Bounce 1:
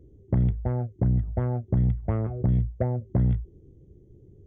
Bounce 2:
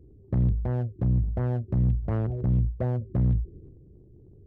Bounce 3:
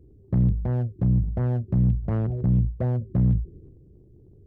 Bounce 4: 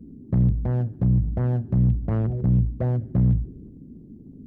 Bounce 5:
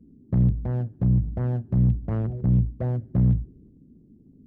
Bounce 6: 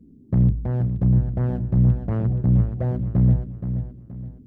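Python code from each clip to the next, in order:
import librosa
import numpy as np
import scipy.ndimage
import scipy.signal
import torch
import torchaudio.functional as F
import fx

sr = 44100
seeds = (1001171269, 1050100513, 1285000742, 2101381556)

y1 = fx.wiener(x, sr, points=41)
y1 = fx.transient(y1, sr, attack_db=-4, sustain_db=6)
y2 = fx.dynamic_eq(y1, sr, hz=170.0, q=1.5, threshold_db=-39.0, ratio=4.0, max_db=6)
y3 = fx.dmg_noise_band(y2, sr, seeds[0], low_hz=150.0, high_hz=290.0, level_db=-45.0)
y3 = fx.echo_feedback(y3, sr, ms=72, feedback_pct=57, wet_db=-22.5)
y3 = y3 * librosa.db_to_amplitude(1.0)
y4 = fx.upward_expand(y3, sr, threshold_db=-35.0, expansion=1.5)
y5 = fx.echo_feedback(y4, sr, ms=474, feedback_pct=35, wet_db=-9.0)
y5 = y5 * librosa.db_to_amplitude(2.5)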